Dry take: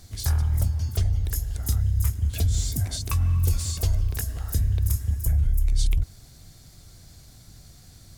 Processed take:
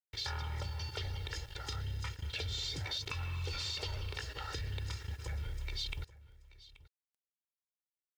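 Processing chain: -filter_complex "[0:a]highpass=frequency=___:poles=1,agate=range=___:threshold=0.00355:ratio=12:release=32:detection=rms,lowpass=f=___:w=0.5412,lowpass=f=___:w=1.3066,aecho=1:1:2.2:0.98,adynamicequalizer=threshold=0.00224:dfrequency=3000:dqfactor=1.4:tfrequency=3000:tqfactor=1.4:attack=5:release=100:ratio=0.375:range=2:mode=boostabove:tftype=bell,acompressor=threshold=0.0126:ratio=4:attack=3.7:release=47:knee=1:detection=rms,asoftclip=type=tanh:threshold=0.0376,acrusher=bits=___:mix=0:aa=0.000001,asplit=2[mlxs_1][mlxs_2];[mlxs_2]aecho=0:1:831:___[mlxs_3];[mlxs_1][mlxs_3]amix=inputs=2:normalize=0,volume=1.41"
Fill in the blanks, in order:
910, 0.0891, 4.4k, 4.4k, 10, 0.112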